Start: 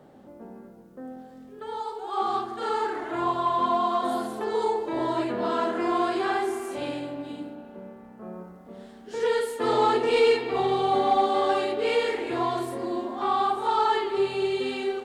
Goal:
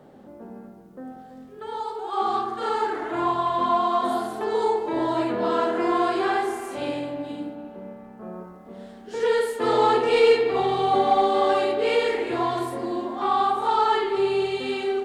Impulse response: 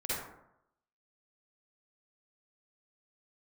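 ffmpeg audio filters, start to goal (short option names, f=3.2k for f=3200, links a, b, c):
-filter_complex "[0:a]asplit=2[a][b];[1:a]atrim=start_sample=2205,lowpass=5.4k[c];[b][c]afir=irnorm=-1:irlink=0,volume=-13dB[d];[a][d]amix=inputs=2:normalize=0,volume=1dB"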